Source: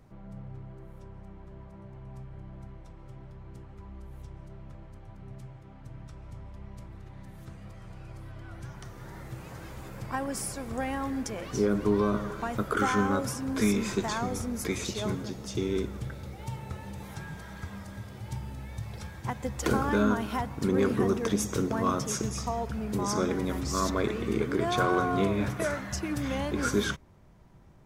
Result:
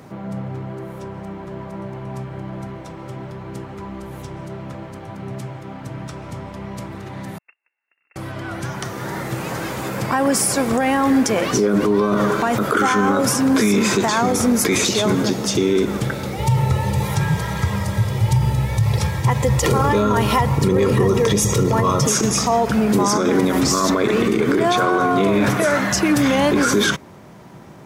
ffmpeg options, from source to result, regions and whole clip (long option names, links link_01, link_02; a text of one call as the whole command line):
ffmpeg -i in.wav -filter_complex "[0:a]asettb=1/sr,asplit=3[link_01][link_02][link_03];[link_01]atrim=end=7.384[link_04];[link_02]atrim=start=7.38:end=8.16,asetpts=PTS-STARTPTS,afade=type=in:duration=0.004:curve=qsin,afade=type=out:start_time=0.776:duration=0.004:curve=qsin,agate=range=-49dB:threshold=-39dB:ratio=16:release=100:detection=peak,lowshelf=frequency=540:width_type=q:width=1.5:gain=-10.5,lowpass=frequency=2400:width_type=q:width=0.5098,lowpass=frequency=2400:width_type=q:width=0.6013,lowpass=frequency=2400:width_type=q:width=0.9,lowpass=frequency=2400:width_type=q:width=2.563,afreqshift=-2800[link_05];[link_03]atrim=start=8.156[link_06];[link_04][link_05]acrossfade=duration=0.004:curve1=hsin:curve2=qsin[link_07];[link_07][link_06]acrossfade=duration=0.004:curve1=qsin:curve2=hsin,asettb=1/sr,asplit=3[link_08][link_09][link_10];[link_08]atrim=end=16.364[link_11];[link_09]atrim=start=16.36:end=22.07,asetpts=PTS-STARTPTS,afade=type=in:duration=0.004:curve=qsin,afade=type=out:start_time=5.706:duration=0.004:curve=qsin,asuperstop=centerf=1500:order=12:qfactor=7.7,lowshelf=frequency=180:width_type=q:width=1.5:gain=9.5,aecho=1:1:2.1:0.41,atrim=end_sample=251811[link_12];[link_10]atrim=start=22.066[link_13];[link_11][link_12]acrossfade=duration=0.004:curve1=hsin:curve2=qsin[link_14];[link_14][link_13]acrossfade=duration=0.004:curve1=qsin:curve2=hsin,highpass=170,alimiter=level_in=27dB:limit=-1dB:release=50:level=0:latency=1,volume=-7.5dB" out.wav